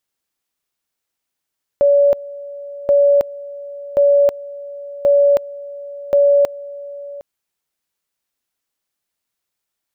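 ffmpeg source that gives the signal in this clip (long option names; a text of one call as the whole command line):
ffmpeg -f lavfi -i "aevalsrc='pow(10,(-8.5-19.5*gte(mod(t,1.08),0.32))/20)*sin(2*PI*569*t)':duration=5.4:sample_rate=44100" out.wav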